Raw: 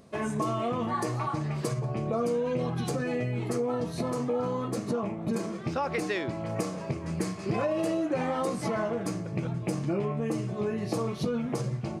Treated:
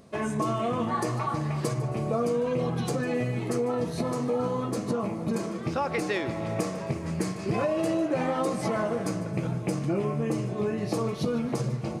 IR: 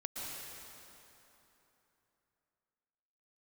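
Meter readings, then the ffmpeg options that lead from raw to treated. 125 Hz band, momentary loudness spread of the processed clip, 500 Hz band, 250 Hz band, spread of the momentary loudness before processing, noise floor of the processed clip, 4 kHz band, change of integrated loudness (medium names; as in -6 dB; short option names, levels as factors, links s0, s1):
+1.5 dB, 4 LU, +2.0 dB, +2.0 dB, 4 LU, -35 dBFS, +2.0 dB, +2.0 dB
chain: -filter_complex "[0:a]asplit=2[s0][s1];[1:a]atrim=start_sample=2205,adelay=150[s2];[s1][s2]afir=irnorm=-1:irlink=0,volume=0.237[s3];[s0][s3]amix=inputs=2:normalize=0,volume=1.19"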